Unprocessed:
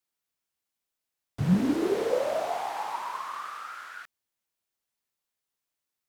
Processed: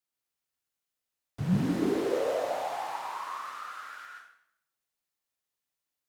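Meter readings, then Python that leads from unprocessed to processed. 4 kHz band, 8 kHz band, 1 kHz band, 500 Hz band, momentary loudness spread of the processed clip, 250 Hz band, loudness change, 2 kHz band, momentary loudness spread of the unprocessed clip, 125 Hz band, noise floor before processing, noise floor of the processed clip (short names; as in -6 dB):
-1.5 dB, -1.5 dB, -2.0 dB, -2.0 dB, 15 LU, -2.5 dB, -2.5 dB, -1.5 dB, 16 LU, -2.0 dB, under -85 dBFS, under -85 dBFS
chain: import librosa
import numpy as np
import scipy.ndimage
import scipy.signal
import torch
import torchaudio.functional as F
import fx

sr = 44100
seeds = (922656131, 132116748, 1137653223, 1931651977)

y = fx.rev_plate(x, sr, seeds[0], rt60_s=0.72, hf_ratio=0.85, predelay_ms=115, drr_db=0.5)
y = y * librosa.db_to_amplitude(-4.5)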